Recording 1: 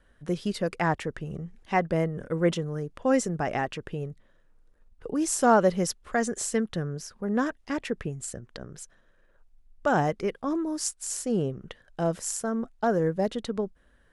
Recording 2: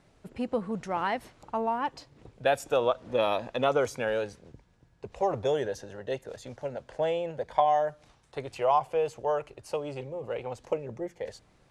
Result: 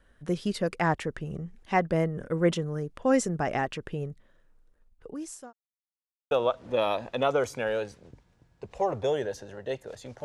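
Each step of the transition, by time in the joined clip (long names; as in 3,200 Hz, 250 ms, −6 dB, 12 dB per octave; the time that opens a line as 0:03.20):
recording 1
0:04.43–0:05.53: fade out linear
0:05.53–0:06.31: silence
0:06.31: continue with recording 2 from 0:02.72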